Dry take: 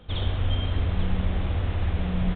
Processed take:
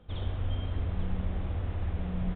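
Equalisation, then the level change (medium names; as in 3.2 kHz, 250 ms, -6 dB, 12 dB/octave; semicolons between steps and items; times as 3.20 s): treble shelf 2.4 kHz -10 dB; -6.5 dB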